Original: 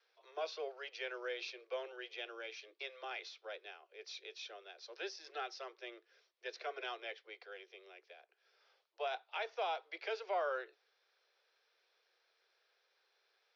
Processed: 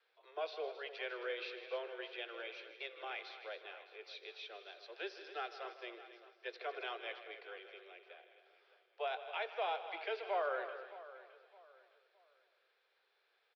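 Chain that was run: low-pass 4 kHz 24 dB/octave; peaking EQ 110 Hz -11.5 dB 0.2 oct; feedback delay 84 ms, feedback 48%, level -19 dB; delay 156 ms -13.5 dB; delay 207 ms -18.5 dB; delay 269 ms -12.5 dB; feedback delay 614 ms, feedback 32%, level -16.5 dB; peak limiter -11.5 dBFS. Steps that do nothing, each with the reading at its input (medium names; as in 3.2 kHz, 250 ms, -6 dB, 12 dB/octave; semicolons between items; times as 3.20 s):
peaking EQ 110 Hz: input has nothing below 300 Hz; peak limiter -11.5 dBFS: peak at its input -25.5 dBFS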